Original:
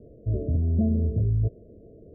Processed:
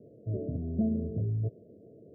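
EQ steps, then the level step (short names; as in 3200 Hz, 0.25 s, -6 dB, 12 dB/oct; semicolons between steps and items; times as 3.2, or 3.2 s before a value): HPF 110 Hz 24 dB/oct; -3.5 dB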